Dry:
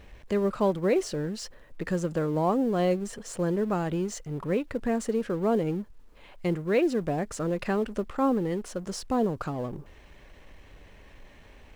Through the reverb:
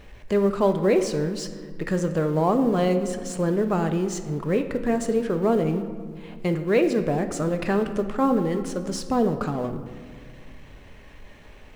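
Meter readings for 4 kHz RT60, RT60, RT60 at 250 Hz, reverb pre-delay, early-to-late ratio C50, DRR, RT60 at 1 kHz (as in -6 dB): 1.0 s, 1.8 s, 2.8 s, 5 ms, 10.0 dB, 7.0 dB, 1.7 s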